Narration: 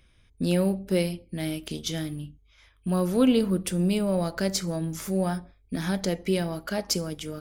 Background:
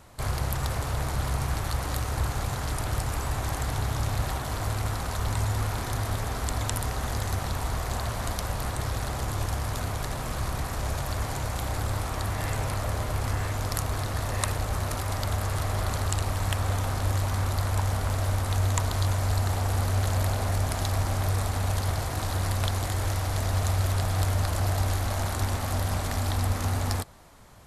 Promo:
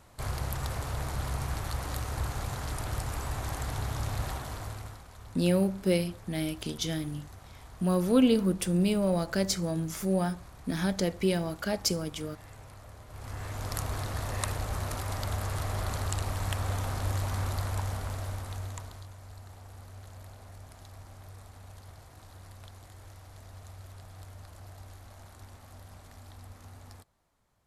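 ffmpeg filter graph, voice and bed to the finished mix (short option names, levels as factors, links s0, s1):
-filter_complex "[0:a]adelay=4950,volume=0.841[s0];[1:a]volume=3.35,afade=t=out:st=4.29:d=0.75:silence=0.177828,afade=t=in:st=13.08:d=0.72:silence=0.16788,afade=t=out:st=17.47:d=1.61:silence=0.133352[s1];[s0][s1]amix=inputs=2:normalize=0"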